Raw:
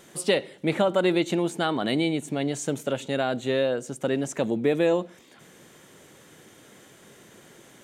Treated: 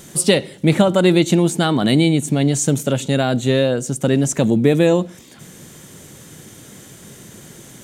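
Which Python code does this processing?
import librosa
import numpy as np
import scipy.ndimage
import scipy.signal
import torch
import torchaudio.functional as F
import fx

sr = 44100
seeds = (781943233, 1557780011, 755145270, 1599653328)

y = fx.bass_treble(x, sr, bass_db=12, treble_db=9)
y = y * 10.0 ** (5.5 / 20.0)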